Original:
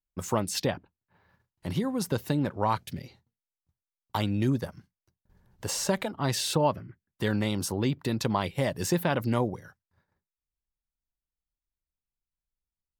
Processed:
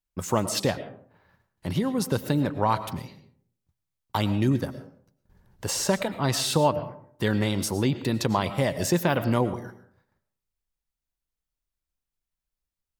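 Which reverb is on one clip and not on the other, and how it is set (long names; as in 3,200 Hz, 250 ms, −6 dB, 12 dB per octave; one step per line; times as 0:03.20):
comb and all-pass reverb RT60 0.59 s, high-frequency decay 0.45×, pre-delay 70 ms, DRR 12 dB
level +3 dB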